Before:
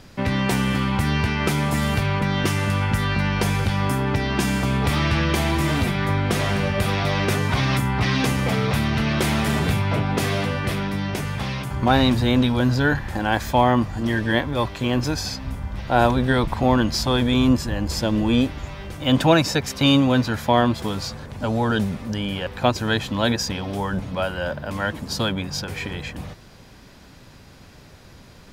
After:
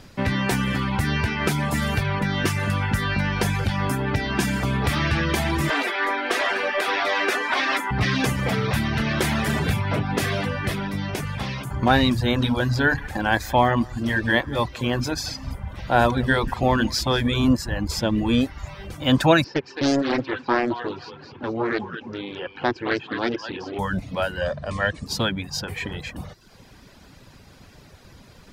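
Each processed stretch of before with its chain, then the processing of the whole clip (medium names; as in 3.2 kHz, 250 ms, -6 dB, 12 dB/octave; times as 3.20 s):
5.70–7.91 s: steep high-pass 260 Hz 48 dB/octave + overdrive pedal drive 11 dB, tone 3 kHz, clips at -9 dBFS
12.21–17.44 s: hum notches 50/100/150/200/250/300/350/400/450 Hz + delay 177 ms -13.5 dB
19.44–23.79 s: cabinet simulation 190–3600 Hz, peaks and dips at 200 Hz -9 dB, 360 Hz +8 dB, 620 Hz -10 dB, 1.2 kHz -5 dB, 2 kHz -8 dB, 3.5 kHz -9 dB + thinning echo 215 ms, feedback 37%, high-pass 700 Hz, level -5 dB + loudspeaker Doppler distortion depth 0.74 ms
24.41–25.06 s: steep low-pass 9.4 kHz 72 dB/octave + comb 1.7 ms, depth 49%
whole clip: reverb removal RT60 0.7 s; dynamic bell 1.7 kHz, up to +5 dB, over -40 dBFS, Q 4.3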